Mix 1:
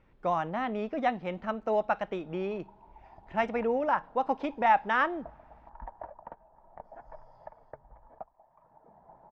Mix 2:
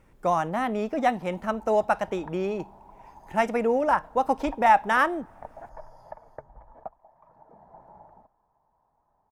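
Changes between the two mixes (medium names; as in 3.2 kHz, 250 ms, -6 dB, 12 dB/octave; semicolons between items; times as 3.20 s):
background: entry -1.35 s; master: remove four-pole ladder low-pass 4.9 kHz, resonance 20%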